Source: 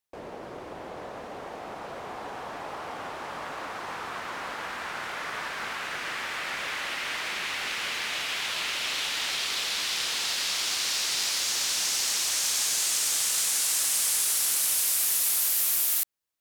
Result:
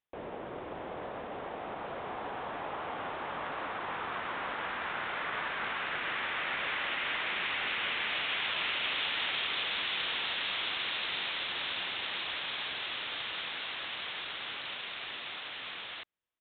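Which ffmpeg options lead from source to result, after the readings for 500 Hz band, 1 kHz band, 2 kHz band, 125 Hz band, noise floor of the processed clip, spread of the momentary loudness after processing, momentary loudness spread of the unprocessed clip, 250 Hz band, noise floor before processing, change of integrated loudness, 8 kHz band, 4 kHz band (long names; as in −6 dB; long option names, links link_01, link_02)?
−1.0 dB, −1.0 dB, −1.0 dB, −1.0 dB, −43 dBFS, 10 LU, 17 LU, −1.0 dB, −41 dBFS, −8.5 dB, below −40 dB, −5.0 dB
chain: -af "aresample=8000,aresample=44100,volume=-1dB"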